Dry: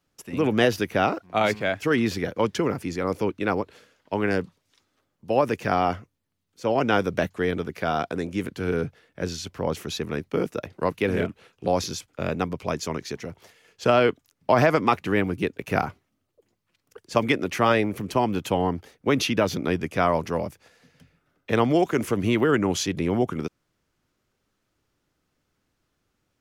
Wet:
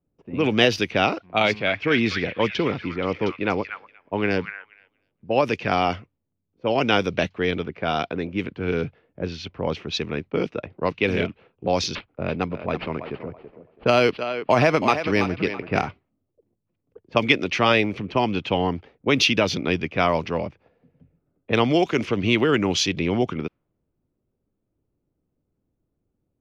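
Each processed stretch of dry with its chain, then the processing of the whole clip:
0:01.43–0:05.37: high-shelf EQ 6,100 Hz −9 dB + echo through a band-pass that steps 238 ms, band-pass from 1,700 Hz, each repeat 0.7 octaves, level −4 dB
0:11.95–0:15.87: feedback echo with a high-pass in the loop 329 ms, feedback 32%, high-pass 320 Hz, level −8.5 dB + linearly interpolated sample-rate reduction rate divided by 6×
whole clip: flat-topped bell 3,700 Hz +10.5 dB; low-pass that shuts in the quiet parts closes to 480 Hz, open at −16.5 dBFS; high-shelf EQ 5,500 Hz −11.5 dB; level +1 dB

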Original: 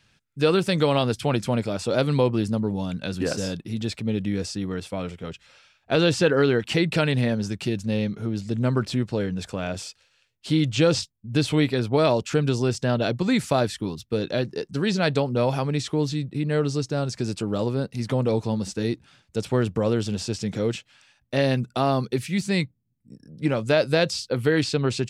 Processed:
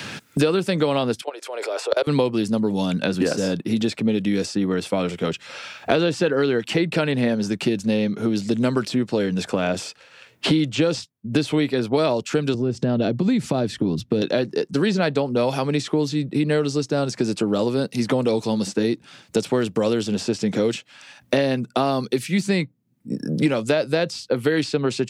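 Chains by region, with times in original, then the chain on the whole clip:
0:01.21–0:02.07: Butterworth high-pass 390 Hz 48 dB per octave + output level in coarse steps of 23 dB
0:12.54–0:14.22: spectral tilt −4.5 dB per octave + downward compressor 4 to 1, threshold −22 dBFS
whole clip: high-pass filter 230 Hz 12 dB per octave; low-shelf EQ 350 Hz +6 dB; multiband upward and downward compressor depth 100%; level +1 dB

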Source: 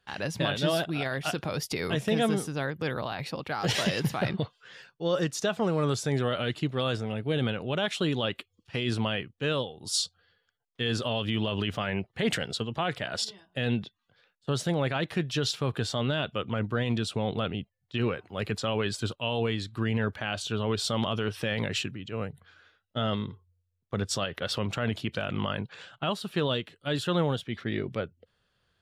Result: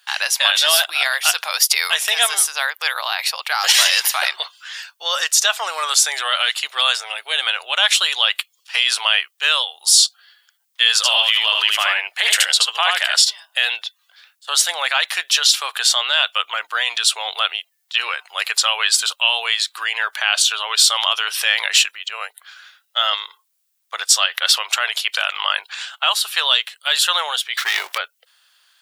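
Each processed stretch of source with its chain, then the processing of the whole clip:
0:10.96–0:13.15: high-pass filter 270 Hz 24 dB per octave + single-tap delay 76 ms −3 dB
0:27.57–0:27.98: high-shelf EQ 11,000 Hz +8.5 dB + leveller curve on the samples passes 2
whole clip: inverse Chebyshev high-pass filter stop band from 170 Hz, stop band 70 dB; spectral tilt +4 dB per octave; boost into a limiter +13 dB; level −1 dB

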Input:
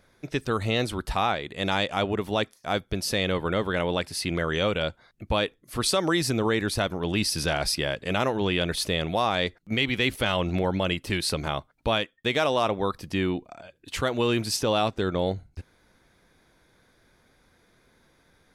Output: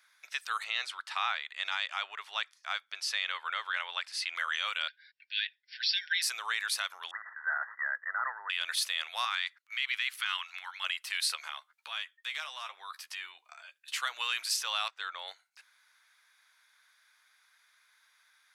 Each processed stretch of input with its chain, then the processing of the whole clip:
0:00.64–0:04.36: high-frequency loss of the air 70 metres + mains-hum notches 50/100/150/200/250 Hz
0:04.88–0:06.22: linear-phase brick-wall band-pass 1,400–5,600 Hz + frequency shifter +58 Hz + comb filter 6.9 ms, depth 44%
0:07.11–0:08.50: tilt shelving filter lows −7.5 dB, about 760 Hz + gain into a clipping stage and back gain 18.5 dB + linear-phase brick-wall low-pass 2,000 Hz
0:09.25–0:10.84: high-pass filter 1,000 Hz 24 dB per octave + high-shelf EQ 4,100 Hz −5.5 dB
0:11.35–0:14.01: downward compressor, threshold −29 dBFS + double-tracking delay 13 ms −7 dB
0:14.88–0:15.28: high-shelf EQ 5,900 Hz −11 dB + multiband upward and downward expander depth 40%
whole clip: high-pass filter 1,200 Hz 24 dB per octave; brickwall limiter −19 dBFS

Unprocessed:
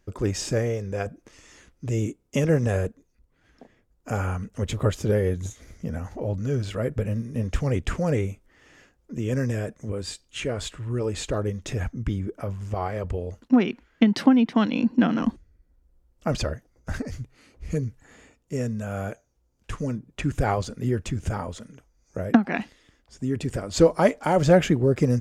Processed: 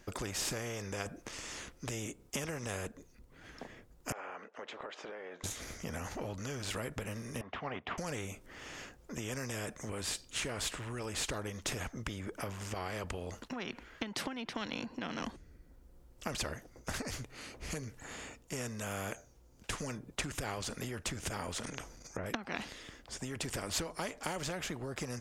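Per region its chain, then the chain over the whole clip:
0:04.12–0:05.44: high-pass filter 500 Hz 24 dB per octave + downward compressor 5 to 1, threshold −37 dBFS + head-to-tape spacing loss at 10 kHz 39 dB
0:07.41–0:07.98: loudspeaker in its box 320–2,600 Hz, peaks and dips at 330 Hz −7 dB, 500 Hz −9 dB, 730 Hz +10 dB, 1,100 Hz +7 dB, 1,600 Hz −4 dB, 2,400 Hz −7 dB + expander for the loud parts, over −42 dBFS
0:21.59–0:22.26: treble cut that deepens with the level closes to 1,600 Hz, closed at −29 dBFS + transient designer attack −1 dB, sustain +12 dB
whole clip: downward compressor 10 to 1, threshold −28 dBFS; every bin compressed towards the loudest bin 2 to 1; level −1 dB

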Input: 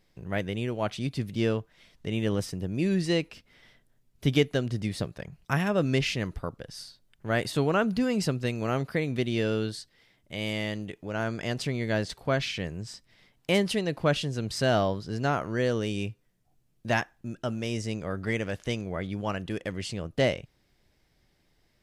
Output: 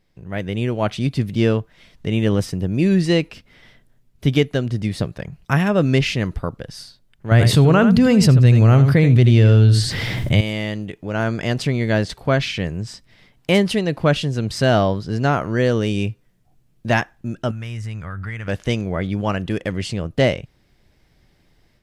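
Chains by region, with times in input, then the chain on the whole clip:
0:07.31–0:10.41: parametric band 110 Hz +13 dB 1 octave + single-tap delay 81 ms −11.5 dB + envelope flattener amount 70%
0:17.51–0:18.48: drawn EQ curve 110 Hz 0 dB, 300 Hz −15 dB, 540 Hz −15 dB, 1,400 Hz +2 dB, 5,200 Hz −11 dB, 13,000 Hz −2 dB + downward compressor 3 to 1, threshold −36 dBFS
whole clip: bass and treble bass +3 dB, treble −3 dB; automatic gain control gain up to 8.5 dB

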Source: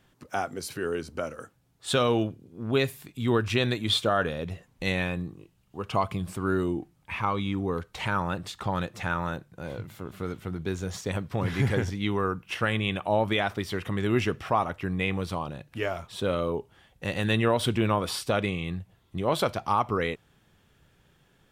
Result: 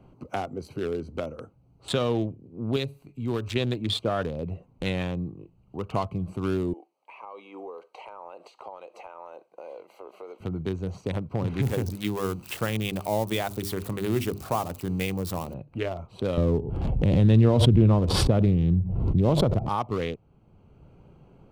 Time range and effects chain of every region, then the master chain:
0:02.76–0:03.56: high-shelf EQ 3,000 Hz +9.5 dB + tuned comb filter 140 Hz, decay 0.36 s, mix 50%
0:06.73–0:10.40: high-pass filter 490 Hz 24 dB per octave + downward compressor 4 to 1, threshold −40 dBFS + parametric band 1,400 Hz −8 dB 0.29 octaves
0:11.62–0:15.54: spike at every zero crossing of −24 dBFS + mains-hum notches 50/100/150/200/250/300/350/400 Hz
0:16.37–0:19.69: spectral tilt −4.5 dB per octave + single-tap delay 90 ms −21 dB + background raised ahead of every attack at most 34 dB per second
whole clip: adaptive Wiener filter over 25 samples; dynamic equaliser 1,600 Hz, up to −6 dB, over −41 dBFS, Q 1.2; multiband upward and downward compressor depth 40%

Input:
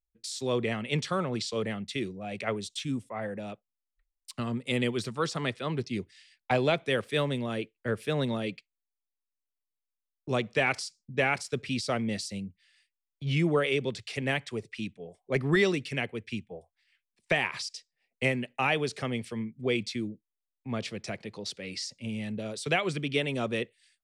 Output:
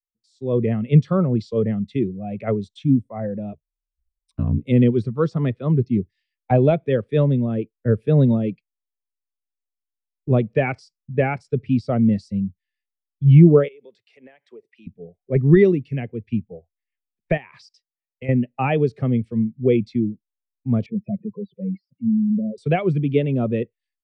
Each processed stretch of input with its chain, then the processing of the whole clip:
0:03.52–0:04.64: EQ curve with evenly spaced ripples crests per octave 1.6, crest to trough 8 dB + ring modulation 30 Hz
0:13.68–0:14.87: high-pass filter 500 Hz + downward compressor, threshold −41 dBFS
0:17.37–0:18.29: low-shelf EQ 450 Hz −6.5 dB + downward compressor, threshold −31 dBFS
0:20.86–0:22.58: expanding power law on the bin magnitudes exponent 2.9 + loudspeaker in its box 140–2,600 Hz, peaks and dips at 190 Hz +4 dB, 360 Hz +4 dB, 780 Hz −6 dB, 1,500 Hz −8 dB
whole clip: spectral tilt −2.5 dB per octave; automatic gain control gain up to 10.5 dB; every bin expanded away from the loudest bin 1.5 to 1

